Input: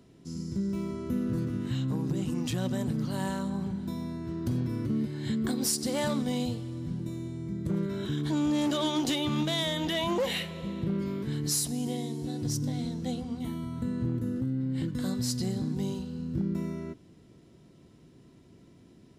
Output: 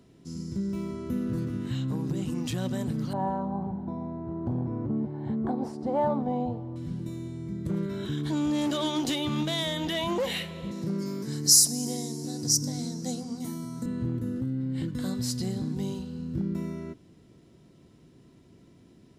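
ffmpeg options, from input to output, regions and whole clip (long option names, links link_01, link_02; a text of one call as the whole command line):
ffmpeg -i in.wav -filter_complex "[0:a]asettb=1/sr,asplit=3[link_01][link_02][link_03];[link_01]atrim=end=3.134[link_04];[link_02]atrim=start=3.13:end=6.76,asetpts=PTS-STARTPTS,afade=type=in:duration=0.004:curve=qsin,afade=type=out:start_time=3.626:duration=0.004:curve=qsin,lowpass=frequency=810:width_type=q:width=4,aemphasis=mode=production:type=75fm[link_05];[link_03]atrim=start=6.756[link_06];[link_04][link_05]acrossfade=duration=0.004:curve1=hsin:curve2=qsin[link_07];[link_07][link_06]acrossfade=duration=0.004:curve1=qsin:curve2=hsin,asettb=1/sr,asplit=3[link_08][link_09][link_10];[link_08]atrim=end=10.714[link_11];[link_09]atrim=start=10.71:end=13.86,asetpts=PTS-STARTPTS,afade=type=in:duration=0.004:curve=qsin,afade=type=out:start_time=3.146:duration=0.004:curve=qsin,highpass=frequency=130:width=0.5412,highpass=frequency=130:width=1.3066,highshelf=frequency=4200:width_type=q:width=3:gain=8.5[link_12];[link_10]atrim=start=13.856[link_13];[link_11][link_12]acrossfade=duration=0.004:curve1=hsin:curve2=qsin[link_14];[link_14][link_13]acrossfade=duration=0.004:curve1=qsin:curve2=hsin" out.wav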